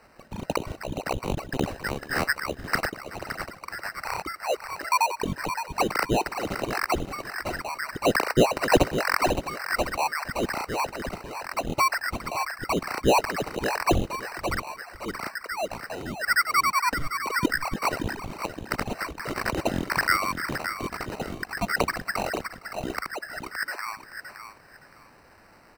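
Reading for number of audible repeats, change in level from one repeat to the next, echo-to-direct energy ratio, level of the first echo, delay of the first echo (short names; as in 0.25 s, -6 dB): 4, no steady repeat, -8.5 dB, -22.5 dB, 0.461 s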